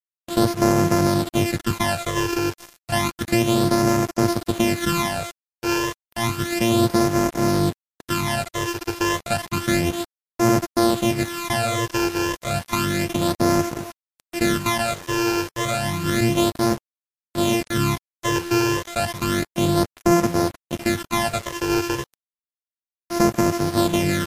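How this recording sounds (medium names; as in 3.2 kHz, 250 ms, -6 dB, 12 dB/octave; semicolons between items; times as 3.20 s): a buzz of ramps at a fixed pitch in blocks of 128 samples; phasing stages 12, 0.31 Hz, lowest notch 200–3500 Hz; a quantiser's noise floor 6-bit, dither none; MP3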